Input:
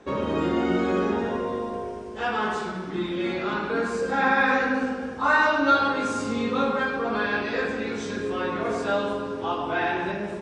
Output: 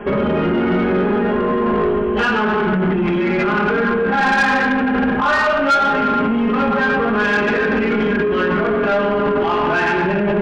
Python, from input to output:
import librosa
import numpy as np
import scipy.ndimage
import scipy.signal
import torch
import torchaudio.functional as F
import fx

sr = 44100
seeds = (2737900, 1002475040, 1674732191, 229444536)

p1 = fx.low_shelf(x, sr, hz=260.0, db=5.0)
p2 = p1 + 0.83 * np.pad(p1, (int(4.9 * sr / 1000.0), 0))[:len(p1)]
p3 = fx.over_compress(p2, sr, threshold_db=-28.0, ratio=-0.5)
p4 = p2 + (p3 * 10.0 ** (1.0 / 20.0))
p5 = fx.brickwall_lowpass(p4, sr, high_hz=3400.0)
p6 = 10.0 ** (-17.0 / 20.0) * np.tanh(p5 / 10.0 ** (-17.0 / 20.0))
p7 = fx.peak_eq(p6, sr, hz=1500.0, db=3.0, octaves=0.33)
y = p7 * 10.0 ** (5.0 / 20.0)